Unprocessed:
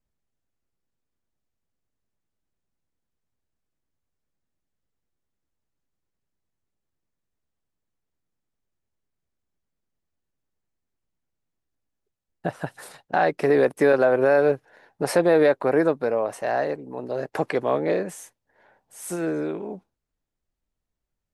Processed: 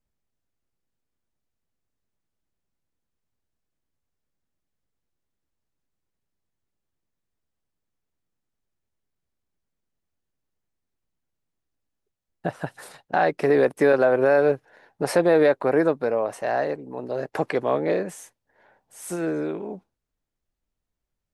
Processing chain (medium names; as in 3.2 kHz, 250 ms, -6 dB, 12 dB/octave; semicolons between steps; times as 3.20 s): treble shelf 10 kHz -3.5 dB